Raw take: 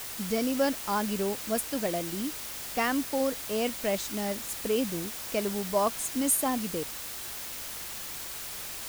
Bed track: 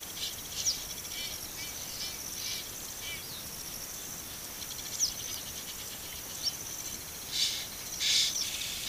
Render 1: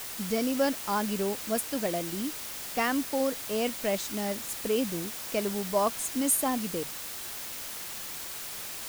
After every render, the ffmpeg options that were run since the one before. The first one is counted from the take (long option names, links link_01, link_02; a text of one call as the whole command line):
ffmpeg -i in.wav -af "bandreject=frequency=50:width_type=h:width=4,bandreject=frequency=100:width_type=h:width=4,bandreject=frequency=150:width_type=h:width=4" out.wav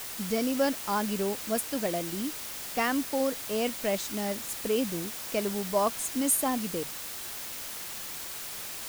ffmpeg -i in.wav -af anull out.wav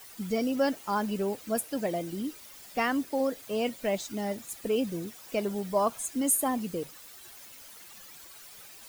ffmpeg -i in.wav -af "afftdn=noise_reduction=13:noise_floor=-39" out.wav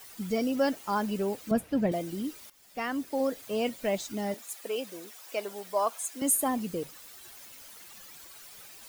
ffmpeg -i in.wav -filter_complex "[0:a]asettb=1/sr,asplit=3[link_01][link_02][link_03];[link_01]atrim=end=1.514[link_04];[link_02]atrim=start=1.51:end=1.92,asetpts=PTS-STARTPTS,afade=type=in:duration=0.004:curve=qsin,afade=type=out:start_time=0.406:duration=0.004:curve=qsin,bass=frequency=250:gain=13,treble=frequency=4000:gain=-12[link_05];[link_03]atrim=start=1.916[link_06];[link_04][link_05]acrossfade=duration=0.004:curve1=hsin:curve2=qsin[link_07];[link_07][link_06]acrossfade=duration=0.004:curve1=qsin:curve2=hsin,asettb=1/sr,asplit=3[link_08][link_09][link_10];[link_08]atrim=end=4.344[link_11];[link_09]atrim=start=4.34:end=6.22,asetpts=PTS-STARTPTS,afade=type=in:duration=0.004:curve=qsin,afade=type=out:start_time=1.876:duration=0.004:curve=qsin,highpass=520[link_12];[link_10]atrim=start=6.216[link_13];[link_11][link_12]acrossfade=duration=0.004:curve1=hsin:curve2=qsin[link_14];[link_14][link_13]acrossfade=duration=0.004:curve1=qsin:curve2=hsin,asplit=2[link_15][link_16];[link_15]atrim=end=2.5,asetpts=PTS-STARTPTS,afade=type=out:start_time=2.496:duration=0.004:curve=hsin:silence=0.16788[link_17];[link_16]atrim=start=2.5,asetpts=PTS-STARTPTS,afade=type=in:duration=0.76:silence=0.16788[link_18];[link_17][link_18]concat=n=2:v=0:a=1" out.wav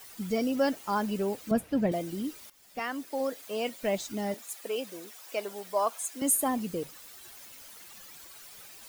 ffmpeg -i in.wav -filter_complex "[0:a]asettb=1/sr,asplit=3[link_01][link_02][link_03];[link_01]atrim=end=2.794[link_04];[link_02]atrim=start=2.79:end=3.83,asetpts=PTS-STARTPTS,afade=type=in:duration=0.004:curve=qsin,afade=type=out:start_time=1.036:duration=0.004:curve=qsin,highpass=frequency=400:poles=1[link_05];[link_03]atrim=start=3.826[link_06];[link_04][link_05]acrossfade=duration=0.004:curve1=hsin:curve2=qsin[link_07];[link_07][link_06]acrossfade=duration=0.004:curve1=qsin:curve2=hsin" out.wav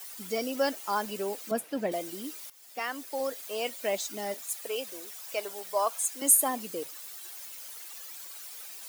ffmpeg -i in.wav -af "highpass=360,highshelf=frequency=4200:gain=6.5" out.wav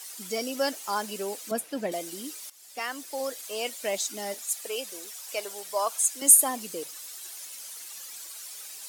ffmpeg -i in.wav -af "lowpass=8000,aemphasis=mode=production:type=50fm" out.wav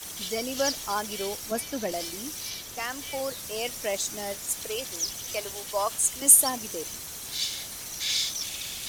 ffmpeg -i in.wav -i bed.wav -filter_complex "[1:a]volume=-0.5dB[link_01];[0:a][link_01]amix=inputs=2:normalize=0" out.wav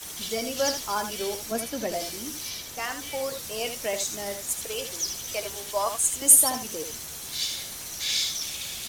ffmpeg -i in.wav -filter_complex "[0:a]asplit=2[link_01][link_02];[link_02]adelay=13,volume=-11dB[link_03];[link_01][link_03]amix=inputs=2:normalize=0,aecho=1:1:79:0.376" out.wav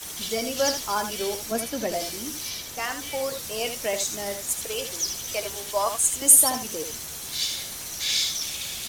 ffmpeg -i in.wav -af "volume=2dB,alimiter=limit=-3dB:level=0:latency=1" out.wav